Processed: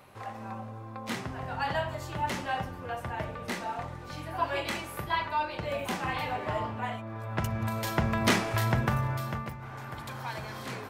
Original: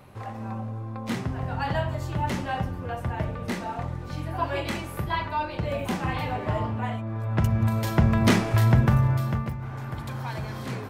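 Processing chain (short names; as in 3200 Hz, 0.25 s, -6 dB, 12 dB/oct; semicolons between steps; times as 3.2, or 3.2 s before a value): low shelf 340 Hz -11 dB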